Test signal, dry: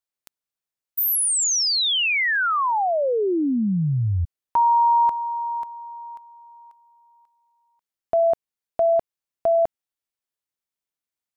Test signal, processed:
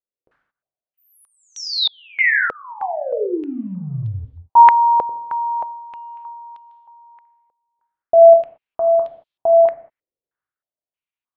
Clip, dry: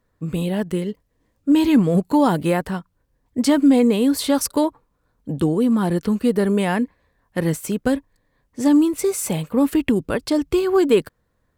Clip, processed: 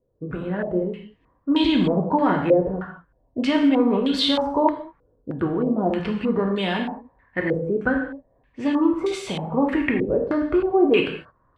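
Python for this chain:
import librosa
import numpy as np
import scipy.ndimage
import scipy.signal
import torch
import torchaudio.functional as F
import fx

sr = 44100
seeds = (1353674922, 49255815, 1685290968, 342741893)

y = fx.transient(x, sr, attack_db=2, sustain_db=7)
y = fx.rev_gated(y, sr, seeds[0], gate_ms=250, shape='falling', drr_db=1.0)
y = fx.filter_held_lowpass(y, sr, hz=3.2, low_hz=490.0, high_hz=3500.0)
y = y * 10.0 ** (-7.0 / 20.0)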